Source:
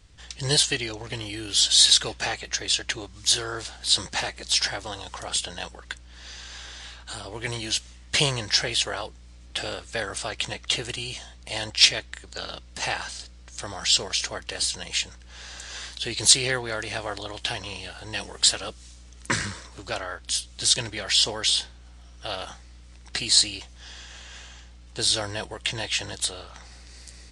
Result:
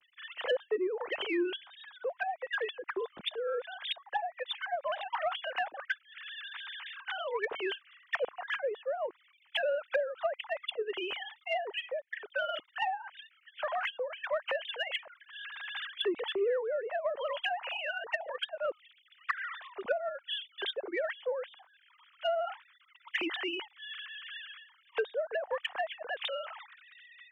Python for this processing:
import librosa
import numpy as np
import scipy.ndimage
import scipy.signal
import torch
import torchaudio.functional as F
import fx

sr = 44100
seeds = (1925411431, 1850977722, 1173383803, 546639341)

p1 = fx.sine_speech(x, sr)
p2 = fx.env_lowpass_down(p1, sr, base_hz=480.0, full_db=-21.5)
p3 = 10.0 ** (-23.5 / 20.0) * np.tanh(p2 / 10.0 ** (-23.5 / 20.0))
p4 = p2 + F.gain(torch.from_numpy(p3), -5.0).numpy()
y = F.gain(torch.from_numpy(p4), -5.0).numpy()